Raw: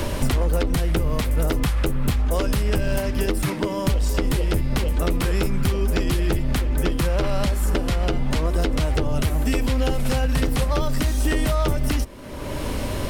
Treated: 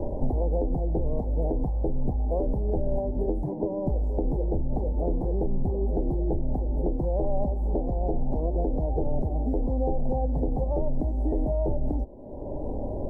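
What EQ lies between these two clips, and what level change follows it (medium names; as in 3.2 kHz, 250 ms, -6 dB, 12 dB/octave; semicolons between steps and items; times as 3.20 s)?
elliptic low-pass 810 Hz, stop band 40 dB; peaking EQ 120 Hz -7 dB 2.9 oct; 0.0 dB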